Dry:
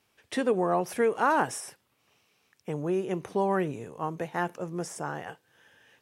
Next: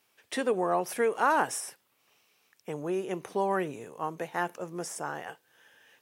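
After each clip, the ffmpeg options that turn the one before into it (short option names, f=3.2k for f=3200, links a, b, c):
-af "lowpass=f=3.5k:p=1,aemphasis=mode=production:type=bsi"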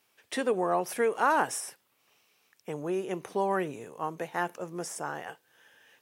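-af anull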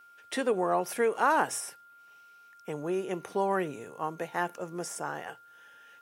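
-af "aeval=exprs='val(0)+0.00224*sin(2*PI*1400*n/s)':c=same,bandreject=f=60:t=h:w=6,bandreject=f=120:t=h:w=6"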